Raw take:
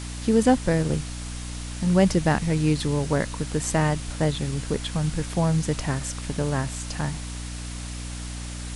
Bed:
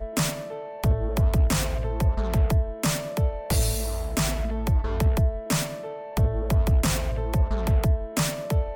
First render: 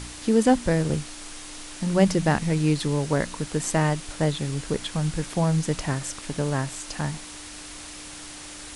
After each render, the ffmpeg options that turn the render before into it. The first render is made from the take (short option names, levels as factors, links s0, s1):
-af "bandreject=f=60:t=h:w=4,bandreject=f=120:t=h:w=4,bandreject=f=180:t=h:w=4,bandreject=f=240:t=h:w=4"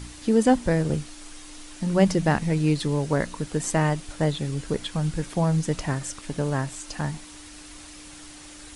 -af "afftdn=nr=6:nf=-40"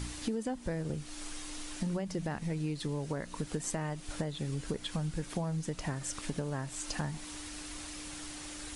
-af "alimiter=limit=0.188:level=0:latency=1:release=324,acompressor=threshold=0.0251:ratio=6"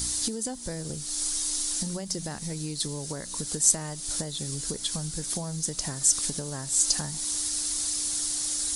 -af "aexciter=amount=7.8:drive=3.5:freq=3800"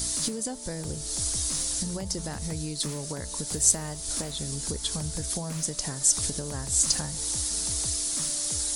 -filter_complex "[1:a]volume=0.133[s0];[0:a][s0]amix=inputs=2:normalize=0"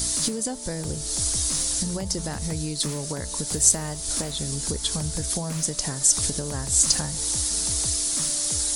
-af "volume=1.58,alimiter=limit=0.708:level=0:latency=1"